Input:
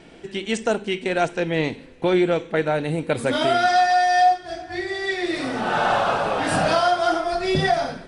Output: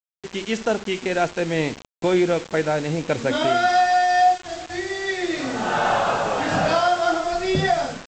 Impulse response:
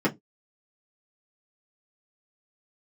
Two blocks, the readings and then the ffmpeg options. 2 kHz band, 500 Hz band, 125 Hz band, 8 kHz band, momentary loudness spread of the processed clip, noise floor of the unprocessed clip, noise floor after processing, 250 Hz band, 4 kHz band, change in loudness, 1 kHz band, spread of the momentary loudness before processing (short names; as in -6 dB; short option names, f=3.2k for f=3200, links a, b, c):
-0.5 dB, 0.0 dB, 0.0 dB, +1.5 dB, 9 LU, -44 dBFS, under -85 dBFS, 0.0 dB, -0.5 dB, 0.0 dB, 0.0 dB, 9 LU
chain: -af "highshelf=f=4.1k:g=-3.5,aresample=16000,acrusher=bits=5:mix=0:aa=0.000001,aresample=44100"